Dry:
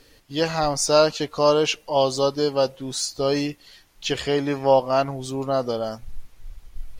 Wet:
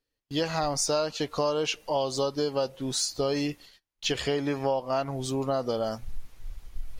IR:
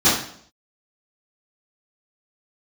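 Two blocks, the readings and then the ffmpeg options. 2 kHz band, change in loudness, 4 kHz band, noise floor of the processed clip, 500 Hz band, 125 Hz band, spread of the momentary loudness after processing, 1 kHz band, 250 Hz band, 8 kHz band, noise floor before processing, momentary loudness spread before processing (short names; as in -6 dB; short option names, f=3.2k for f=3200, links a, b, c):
-5.5 dB, -6.5 dB, -4.5 dB, -83 dBFS, -7.5 dB, -4.0 dB, 16 LU, -7.5 dB, -4.5 dB, -3.0 dB, -56 dBFS, 10 LU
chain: -af "agate=range=-31dB:threshold=-45dB:ratio=16:detection=peak,acompressor=threshold=-24dB:ratio=6"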